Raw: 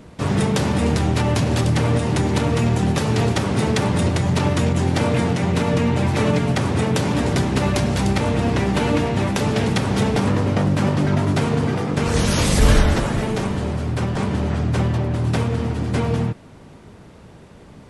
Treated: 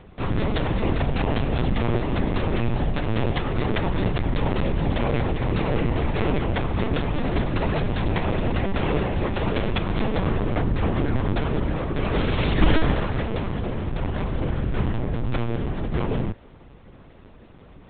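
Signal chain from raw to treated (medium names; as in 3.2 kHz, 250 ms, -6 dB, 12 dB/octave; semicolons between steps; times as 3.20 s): LPC vocoder at 8 kHz pitch kept; trim -3.5 dB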